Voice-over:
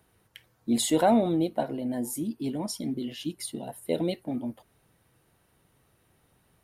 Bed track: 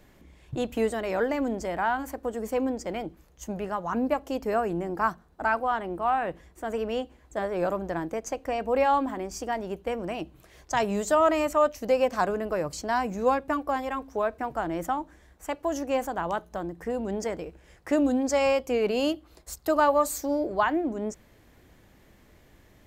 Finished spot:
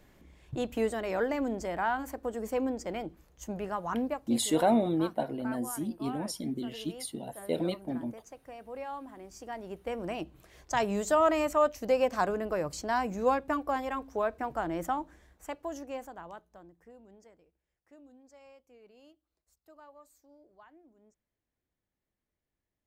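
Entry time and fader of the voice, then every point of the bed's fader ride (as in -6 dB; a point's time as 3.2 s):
3.60 s, -3.0 dB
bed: 3.99 s -3.5 dB
4.39 s -17 dB
9 s -17 dB
10.08 s -3 dB
15.15 s -3 dB
17.7 s -32.5 dB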